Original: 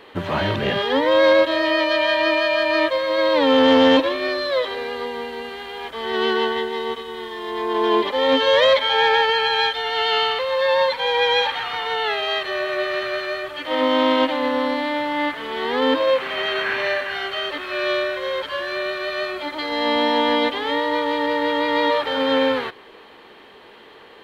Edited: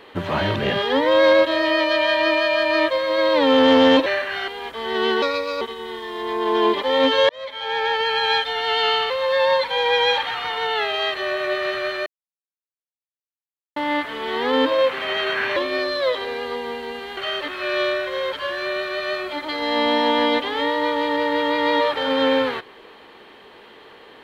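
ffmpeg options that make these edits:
ffmpeg -i in.wav -filter_complex "[0:a]asplit=10[link_01][link_02][link_03][link_04][link_05][link_06][link_07][link_08][link_09][link_10];[link_01]atrim=end=4.062[link_11];[link_02]atrim=start=16.848:end=17.272[link_12];[link_03]atrim=start=5.668:end=6.414[link_13];[link_04]atrim=start=6.41:end=6.9,asetpts=PTS-STARTPTS,asetrate=55125,aresample=44100,atrim=end_sample=17287,asetpts=PTS-STARTPTS[link_14];[link_05]atrim=start=6.896:end=8.58,asetpts=PTS-STARTPTS,afade=type=out:start_time=1.68:duration=0.004:curve=hsin[link_15];[link_06]atrim=start=8.58:end=13.35,asetpts=PTS-STARTPTS,afade=type=in:duration=1.01,afade=type=out:start_time=4.766:duration=0.004:curve=hsin[link_16];[link_07]atrim=start=13.35:end=15.05,asetpts=PTS-STARTPTS,volume=0[link_17];[link_08]atrim=start=15.05:end=16.852,asetpts=PTS-STARTPTS,afade=type=in:duration=0.004:curve=hsin[link_18];[link_09]atrim=start=4.058:end=5.672[link_19];[link_10]atrim=start=17.268[link_20];[link_11][link_12]acrossfade=duration=0.004:curve1=hsin:curve2=hsin[link_21];[link_21][link_13]acrossfade=duration=0.004:curve1=hsin:curve2=hsin[link_22];[link_22][link_14]acrossfade=duration=0.004:curve1=hsin:curve2=hsin[link_23];[link_15][link_16][link_17][link_18]concat=n=4:v=0:a=1[link_24];[link_23][link_24]acrossfade=duration=0.004:curve1=hsin:curve2=hsin[link_25];[link_25][link_19]acrossfade=duration=0.004:curve1=hsin:curve2=hsin[link_26];[link_26][link_20]acrossfade=duration=0.004:curve1=hsin:curve2=hsin" out.wav

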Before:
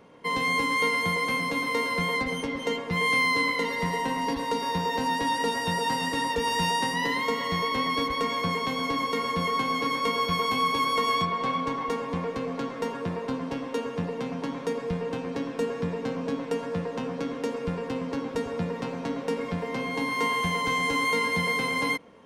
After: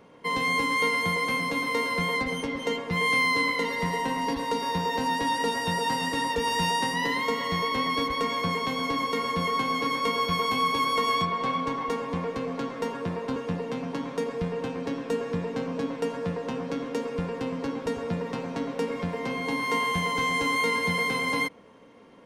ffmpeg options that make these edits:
ffmpeg -i in.wav -filter_complex "[0:a]asplit=2[link_01][link_02];[link_01]atrim=end=13.362[link_03];[link_02]atrim=start=13.848[link_04];[link_03][link_04]acrossfade=duration=0.004:curve1=hsin:curve2=hsin" out.wav

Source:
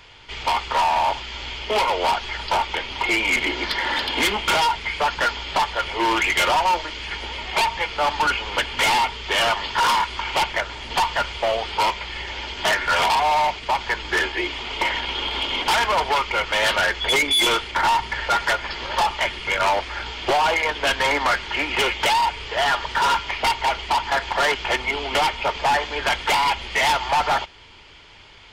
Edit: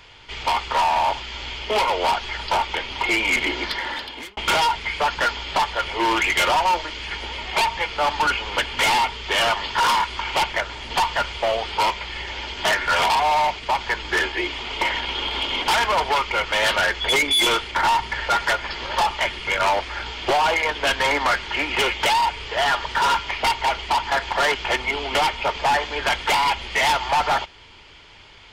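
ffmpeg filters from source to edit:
ffmpeg -i in.wav -filter_complex "[0:a]asplit=2[link_01][link_02];[link_01]atrim=end=4.37,asetpts=PTS-STARTPTS,afade=type=out:start_time=3.55:duration=0.82[link_03];[link_02]atrim=start=4.37,asetpts=PTS-STARTPTS,afade=type=in:duration=0.004:curve=hsin[link_04];[link_03][link_04]concat=n=2:v=0:a=1" out.wav

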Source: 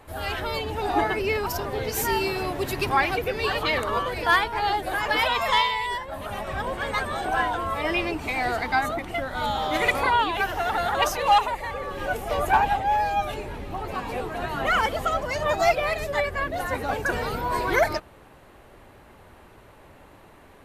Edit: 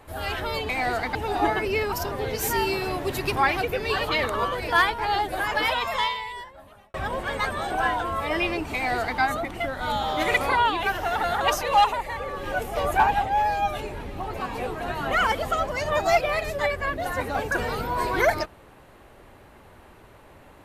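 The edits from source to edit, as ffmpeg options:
ffmpeg -i in.wav -filter_complex "[0:a]asplit=4[link_01][link_02][link_03][link_04];[link_01]atrim=end=0.692[link_05];[link_02]atrim=start=8.278:end=8.742[link_06];[link_03]atrim=start=0.688:end=6.48,asetpts=PTS-STARTPTS,afade=type=out:start_time=4.312:duration=1.48[link_07];[link_04]atrim=start=6.48,asetpts=PTS-STARTPTS,afade=type=in:duration=0.004:curve=hsin[link_08];[link_05][link_06]acrossfade=duration=0.004:curve1=hsin:curve2=hsin[link_09];[link_07][link_08]concat=n=2:v=0:a=1[link_10];[link_09][link_10]acrossfade=duration=0.004:curve1=hsin:curve2=hsin" out.wav

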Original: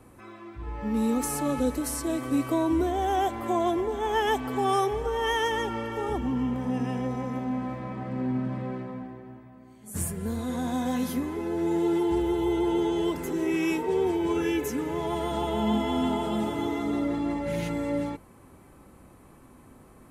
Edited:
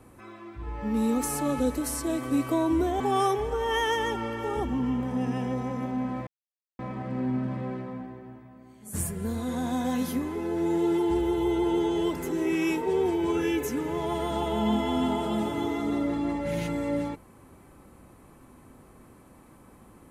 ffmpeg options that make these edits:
ffmpeg -i in.wav -filter_complex "[0:a]asplit=3[link_01][link_02][link_03];[link_01]atrim=end=3.002[link_04];[link_02]atrim=start=4.528:end=7.8,asetpts=PTS-STARTPTS,afade=type=out:start_time=3.268:duration=0.004:curve=hsin,apad=pad_dur=0.52[link_05];[link_03]atrim=start=7.8,asetpts=PTS-STARTPTS,afade=type=in:duration=0.004:curve=hsin[link_06];[link_05][link_06]concat=n=2:v=0:a=1[link_07];[link_04][link_07]acrossfade=duration=0.004:curve1=hsin:curve2=hsin" out.wav

